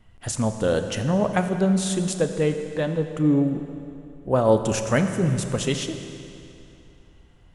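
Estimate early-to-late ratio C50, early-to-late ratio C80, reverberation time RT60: 8.0 dB, 8.5 dB, 2.8 s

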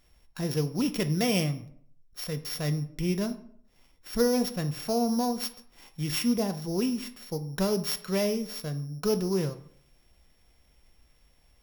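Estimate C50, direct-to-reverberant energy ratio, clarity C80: 14.0 dB, 8.0 dB, 17.5 dB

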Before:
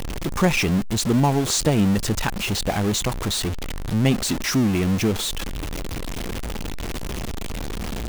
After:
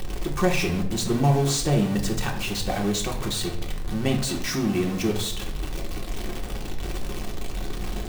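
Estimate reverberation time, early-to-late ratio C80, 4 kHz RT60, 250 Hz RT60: 0.75 s, 12.5 dB, 0.50 s, 0.85 s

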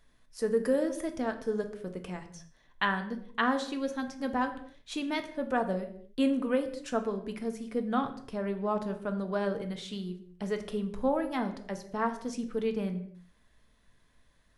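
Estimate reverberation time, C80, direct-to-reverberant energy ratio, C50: no single decay rate, 14.5 dB, 6.0 dB, 12.0 dB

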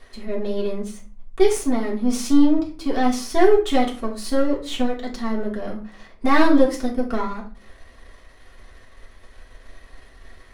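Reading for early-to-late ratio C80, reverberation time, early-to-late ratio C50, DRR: 15.5 dB, 0.40 s, 9.0 dB, -4.0 dB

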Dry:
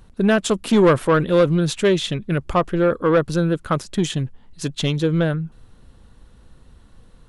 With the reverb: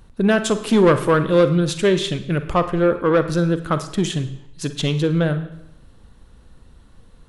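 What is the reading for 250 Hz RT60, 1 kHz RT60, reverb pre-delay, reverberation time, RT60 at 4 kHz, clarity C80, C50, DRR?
0.80 s, 0.75 s, 38 ms, 0.75 s, 0.70 s, 14.0 dB, 11.5 dB, 10.0 dB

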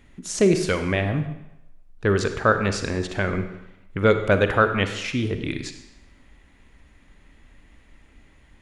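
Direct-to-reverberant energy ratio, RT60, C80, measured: 7.5 dB, 0.90 s, 11.0 dB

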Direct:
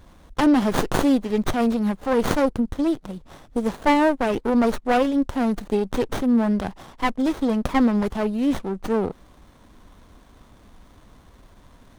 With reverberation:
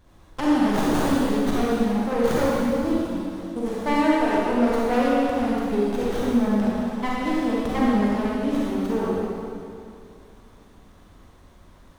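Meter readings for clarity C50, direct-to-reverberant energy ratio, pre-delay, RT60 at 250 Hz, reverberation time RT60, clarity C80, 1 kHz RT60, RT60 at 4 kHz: -5.0 dB, -7.0 dB, 34 ms, 2.5 s, 2.5 s, -2.5 dB, 2.5 s, 2.3 s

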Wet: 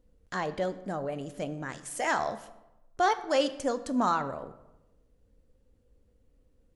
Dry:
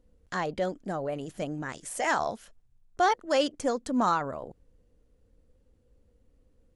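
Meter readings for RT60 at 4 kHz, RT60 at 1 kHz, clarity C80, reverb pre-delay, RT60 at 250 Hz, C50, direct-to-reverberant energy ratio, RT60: 0.65 s, 0.95 s, 16.5 dB, 12 ms, 1.1 s, 14.5 dB, 11.5 dB, 1.0 s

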